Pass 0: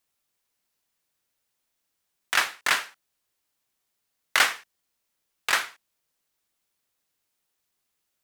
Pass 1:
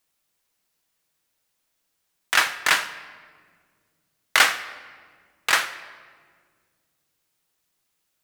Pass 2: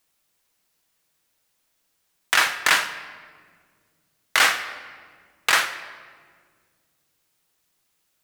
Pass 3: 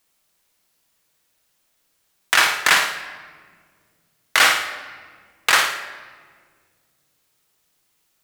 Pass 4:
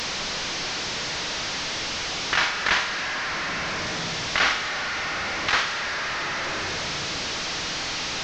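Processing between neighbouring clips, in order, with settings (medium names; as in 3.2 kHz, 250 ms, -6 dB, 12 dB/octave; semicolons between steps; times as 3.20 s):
simulated room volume 2500 m³, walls mixed, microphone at 0.61 m; trim +3.5 dB
peak limiter -8.5 dBFS, peak gain reduction 6.5 dB; trim +3.5 dB
flutter echo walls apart 9.4 m, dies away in 0.5 s; trim +2.5 dB
one-bit delta coder 32 kbps, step -16 dBFS; trim -6 dB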